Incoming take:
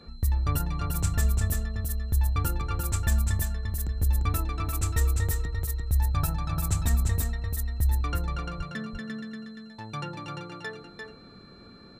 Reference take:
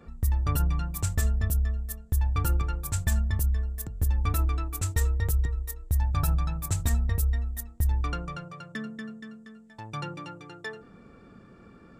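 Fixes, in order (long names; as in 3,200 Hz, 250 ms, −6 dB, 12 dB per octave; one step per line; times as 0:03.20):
notch filter 4,100 Hz, Q 30
0:06.56–0:06.68: high-pass filter 140 Hz 24 dB per octave
0:08.57–0:08.69: high-pass filter 140 Hz 24 dB per octave
echo removal 346 ms −4.5 dB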